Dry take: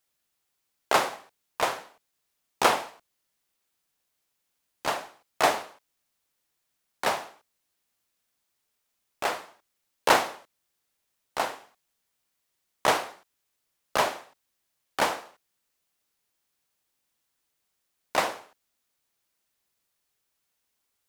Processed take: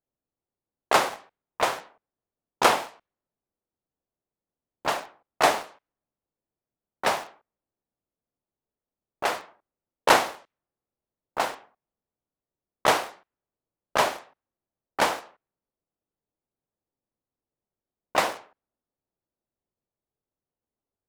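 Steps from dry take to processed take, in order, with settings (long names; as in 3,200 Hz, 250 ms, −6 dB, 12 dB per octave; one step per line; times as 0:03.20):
low-pass that shuts in the quiet parts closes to 580 Hz, open at −25 dBFS
in parallel at −11 dB: bit reduction 6 bits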